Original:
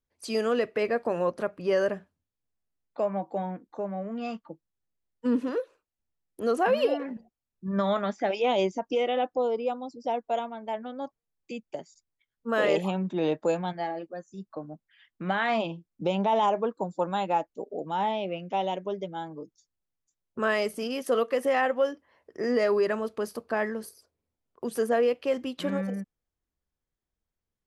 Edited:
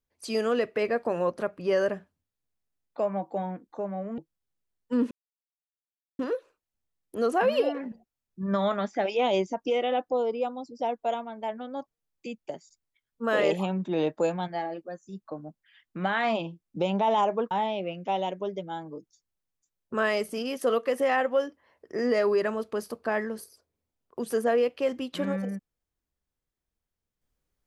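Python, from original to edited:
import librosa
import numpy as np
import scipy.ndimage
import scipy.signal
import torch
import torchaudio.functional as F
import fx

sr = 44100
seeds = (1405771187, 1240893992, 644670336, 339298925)

y = fx.edit(x, sr, fx.cut(start_s=4.18, length_s=0.33),
    fx.insert_silence(at_s=5.44, length_s=1.08),
    fx.cut(start_s=16.76, length_s=1.2), tone=tone)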